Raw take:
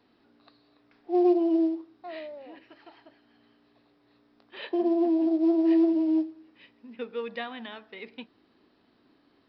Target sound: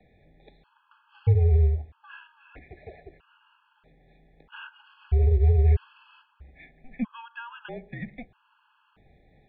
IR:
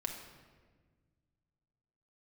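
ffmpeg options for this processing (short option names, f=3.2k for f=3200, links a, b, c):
-filter_complex "[0:a]acrossover=split=540|1300[a][b][c];[a]acompressor=threshold=-24dB:ratio=4[d];[b]acompressor=threshold=-42dB:ratio=4[e];[c]acompressor=threshold=-52dB:ratio=4[f];[d][e][f]amix=inputs=3:normalize=0,highpass=f=300:t=q:w=0.5412,highpass=f=300:t=q:w=1.307,lowpass=f=3.3k:t=q:w=0.5176,lowpass=f=3.3k:t=q:w=0.7071,lowpass=f=3.3k:t=q:w=1.932,afreqshift=-250,afftfilt=real='re*gt(sin(2*PI*0.78*pts/sr)*(1-2*mod(floor(b*sr/1024/840),2)),0)':imag='im*gt(sin(2*PI*0.78*pts/sr)*(1-2*mod(floor(b*sr/1024/840),2)),0)':win_size=1024:overlap=0.75,volume=9dB"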